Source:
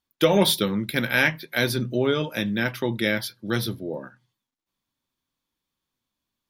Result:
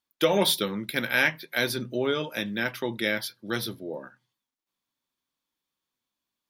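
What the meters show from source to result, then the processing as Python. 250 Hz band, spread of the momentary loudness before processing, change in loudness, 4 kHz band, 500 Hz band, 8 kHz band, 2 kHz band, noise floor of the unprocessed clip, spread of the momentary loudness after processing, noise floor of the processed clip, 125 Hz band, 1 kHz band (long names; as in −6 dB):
−6.0 dB, 9 LU, −3.0 dB, −2.0 dB, −3.5 dB, −2.0 dB, −2.0 dB, below −85 dBFS, 9 LU, below −85 dBFS, −9.0 dB, −2.5 dB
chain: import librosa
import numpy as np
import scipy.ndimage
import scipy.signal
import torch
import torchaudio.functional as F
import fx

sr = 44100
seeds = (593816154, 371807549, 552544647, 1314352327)

y = fx.low_shelf(x, sr, hz=170.0, db=-12.0)
y = y * 10.0 ** (-2.0 / 20.0)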